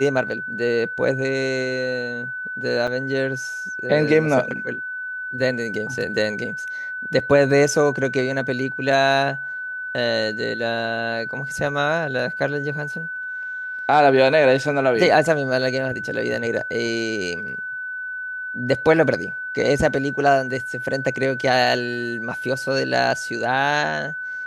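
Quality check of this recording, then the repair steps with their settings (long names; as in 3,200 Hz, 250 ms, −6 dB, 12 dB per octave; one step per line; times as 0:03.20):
whistle 1,500 Hz −27 dBFS
0:02.87–0:02.88: drop-out 6.1 ms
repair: notch filter 1,500 Hz, Q 30
repair the gap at 0:02.87, 6.1 ms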